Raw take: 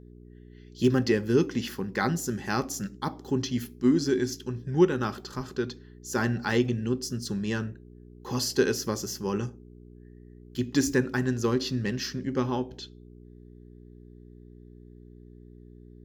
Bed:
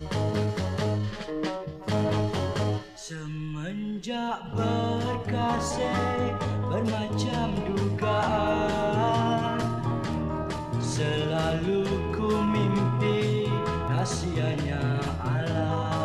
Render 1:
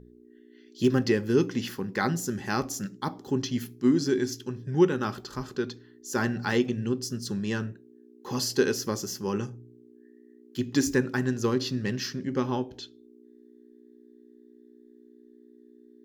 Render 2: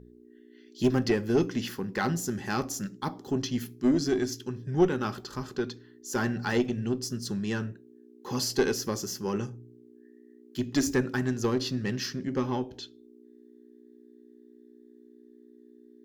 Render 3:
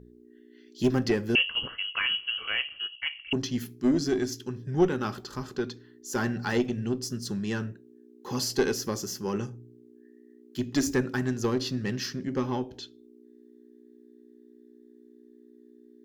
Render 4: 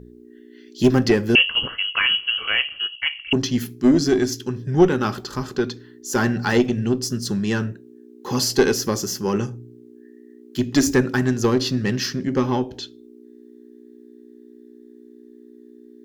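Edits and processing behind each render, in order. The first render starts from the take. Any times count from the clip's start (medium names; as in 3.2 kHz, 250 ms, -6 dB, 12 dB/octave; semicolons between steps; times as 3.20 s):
de-hum 60 Hz, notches 3
single-diode clipper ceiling -16.5 dBFS
1.35–3.33 s: frequency inversion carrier 3.1 kHz
trim +8.5 dB; peak limiter -2 dBFS, peak gain reduction 1 dB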